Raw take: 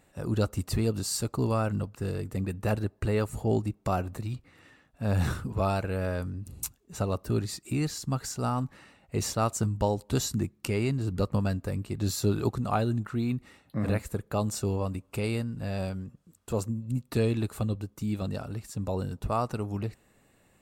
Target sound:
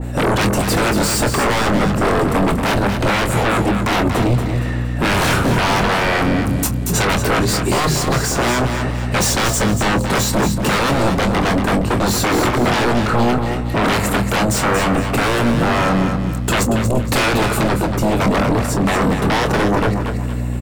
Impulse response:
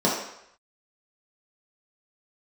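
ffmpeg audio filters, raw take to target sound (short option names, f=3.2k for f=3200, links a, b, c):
-filter_complex "[0:a]highpass=f=110:w=0.5412,highpass=f=110:w=1.3066,equalizer=f=370:t=o:w=2.9:g=7.5,bandreject=f=50:t=h:w=6,bandreject=f=100:t=h:w=6,bandreject=f=150:t=h:w=6,bandreject=f=200:t=h:w=6,acrossover=split=450|1700[a][b][c];[a]acompressor=threshold=-34dB:ratio=4[d];[b]alimiter=limit=-23.5dB:level=0:latency=1[e];[c]asoftclip=type=hard:threshold=-36dB[f];[d][e][f]amix=inputs=3:normalize=0,aeval=exprs='val(0)+0.00501*(sin(2*PI*60*n/s)+sin(2*PI*2*60*n/s)/2+sin(2*PI*3*60*n/s)/3+sin(2*PI*4*60*n/s)/4+sin(2*PI*5*60*n/s)/5)':c=same,aeval=exprs='0.15*sin(PI/2*7.08*val(0)/0.15)':c=same,asplit=2[g][h];[h]adelay=25,volume=-9dB[i];[g][i]amix=inputs=2:normalize=0,asplit=2[j][k];[k]aecho=0:1:233|466|699|932:0.447|0.147|0.0486|0.0161[l];[j][l]amix=inputs=2:normalize=0,adynamicequalizer=threshold=0.02:dfrequency=2100:dqfactor=0.7:tfrequency=2100:tqfactor=0.7:attack=5:release=100:ratio=0.375:range=3:mode=cutabove:tftype=highshelf,volume=3.5dB"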